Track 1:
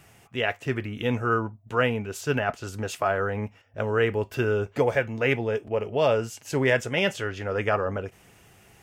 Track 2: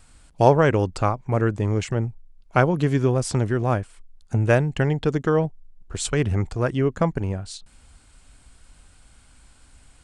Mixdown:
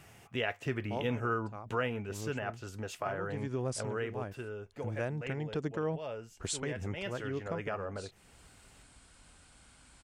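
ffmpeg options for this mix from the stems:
ffmpeg -i stem1.wav -i stem2.wav -filter_complex "[0:a]volume=6dB,afade=type=out:start_time=1.66:duration=0.66:silence=0.446684,afade=type=out:start_time=3.87:duration=0.57:silence=0.354813,afade=type=in:start_time=6.92:duration=0.36:silence=0.421697,asplit=2[link_01][link_02];[1:a]highpass=frequency=120:poles=1,adelay=500,volume=-2dB[link_03];[link_02]apad=whole_len=464425[link_04];[link_03][link_04]sidechaincompress=threshold=-45dB:ratio=16:attack=16:release=493[link_05];[link_01][link_05]amix=inputs=2:normalize=0,highshelf=frequency=9500:gain=-3.5,acompressor=threshold=-34dB:ratio=2" out.wav

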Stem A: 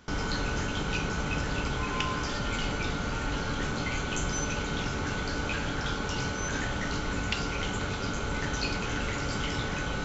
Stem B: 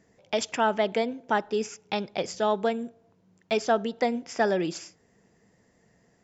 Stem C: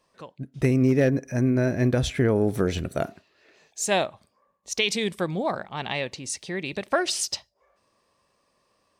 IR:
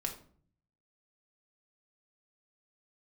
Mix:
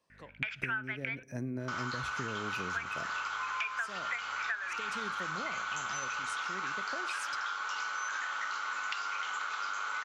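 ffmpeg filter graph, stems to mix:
-filter_complex "[0:a]highpass=frequency=1200:width_type=q:width=3.8,adelay=1600,volume=-0.5dB[link_01];[1:a]highpass=frequency=1500:width_type=q:width=8.8,aeval=exprs='val(0)+0.00251*(sin(2*PI*50*n/s)+sin(2*PI*2*50*n/s)/2+sin(2*PI*3*50*n/s)/3+sin(2*PI*4*50*n/s)/4+sin(2*PI*5*50*n/s)/5)':channel_layout=same,lowpass=frequency=2400:width_type=q:width=6.1,adelay=100,volume=-5.5dB,asplit=3[link_02][link_03][link_04];[link_02]atrim=end=1.23,asetpts=PTS-STARTPTS,afade=type=out:start_time=1.226:duration=0.004:curve=hsin[link_05];[link_03]atrim=start=1.23:end=2.7,asetpts=PTS-STARTPTS,volume=0[link_06];[link_04]atrim=start=2.7,asetpts=PTS-STARTPTS,afade=type=in:duration=0.004:curve=hsin[link_07];[link_05][link_06][link_07]concat=n=3:v=0:a=1,asplit=2[link_08][link_09];[link_09]volume=-23.5dB[link_10];[2:a]acrossover=split=270[link_11][link_12];[link_12]acompressor=threshold=-24dB:ratio=6[link_13];[link_11][link_13]amix=inputs=2:normalize=0,volume=-11dB,asplit=2[link_14][link_15];[link_15]volume=-15dB[link_16];[3:a]atrim=start_sample=2205[link_17];[link_10][link_16]amix=inputs=2:normalize=0[link_18];[link_18][link_17]afir=irnorm=-1:irlink=0[link_19];[link_01][link_08][link_14][link_19]amix=inputs=4:normalize=0,highpass=67,acompressor=threshold=-33dB:ratio=8"

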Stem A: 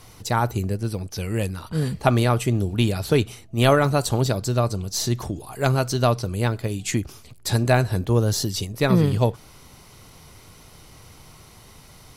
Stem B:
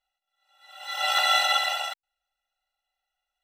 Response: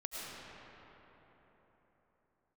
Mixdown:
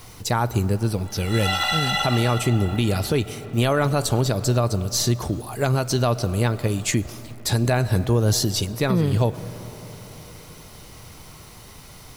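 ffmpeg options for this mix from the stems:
-filter_complex "[0:a]acrusher=bits=8:mix=0:aa=0.000001,volume=3dB,asplit=2[link_01][link_02];[link_02]volume=-19dB[link_03];[1:a]adelay=450,volume=0.5dB,asplit=2[link_04][link_05];[link_05]volume=-5.5dB[link_06];[2:a]atrim=start_sample=2205[link_07];[link_03][link_06]amix=inputs=2:normalize=0[link_08];[link_08][link_07]afir=irnorm=-1:irlink=0[link_09];[link_01][link_04][link_09]amix=inputs=3:normalize=0,alimiter=limit=-11dB:level=0:latency=1:release=130"

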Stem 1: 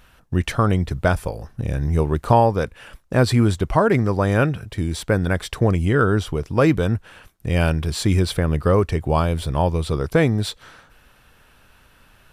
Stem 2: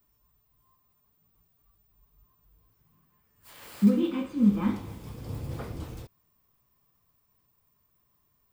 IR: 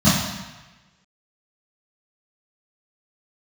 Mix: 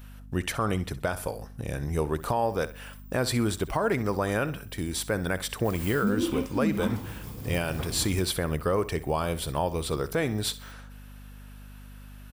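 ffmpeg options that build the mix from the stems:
-filter_complex "[0:a]lowshelf=frequency=180:gain=-10.5,aeval=exprs='val(0)+0.00891*(sin(2*PI*50*n/s)+sin(2*PI*2*50*n/s)/2+sin(2*PI*3*50*n/s)/3+sin(2*PI*4*50*n/s)/4+sin(2*PI*5*50*n/s)/5)':channel_layout=same,volume=-3dB,asplit=2[link_01][link_02];[link_02]volume=-16.5dB[link_03];[1:a]adelay=2200,volume=1dB[link_04];[link_03]aecho=0:1:64|128|192|256:1|0.28|0.0784|0.022[link_05];[link_01][link_04][link_05]amix=inputs=3:normalize=0,highshelf=frequency=9500:gain=12,alimiter=limit=-16dB:level=0:latency=1:release=131"

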